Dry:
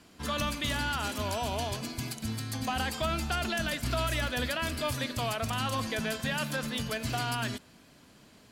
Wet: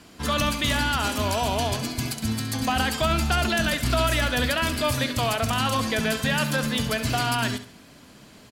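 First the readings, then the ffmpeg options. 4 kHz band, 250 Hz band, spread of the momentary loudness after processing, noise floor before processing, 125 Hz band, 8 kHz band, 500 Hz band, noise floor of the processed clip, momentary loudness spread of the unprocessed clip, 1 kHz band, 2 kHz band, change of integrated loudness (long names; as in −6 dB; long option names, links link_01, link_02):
+8.0 dB, +8.5 dB, 5 LU, −58 dBFS, +7.5 dB, +8.0 dB, +7.5 dB, −50 dBFS, 5 LU, +7.5 dB, +7.5 dB, +8.0 dB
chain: -af "aecho=1:1:68|136|204:0.251|0.0829|0.0274,volume=7.5dB"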